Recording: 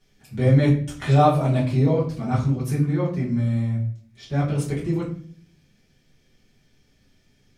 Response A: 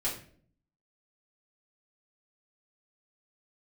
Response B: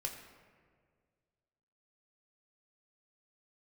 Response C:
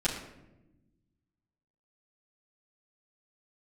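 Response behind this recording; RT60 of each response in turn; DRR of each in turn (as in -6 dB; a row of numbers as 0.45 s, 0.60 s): A; 0.50 s, 1.9 s, 1.0 s; -8.0 dB, 1.0 dB, -10.0 dB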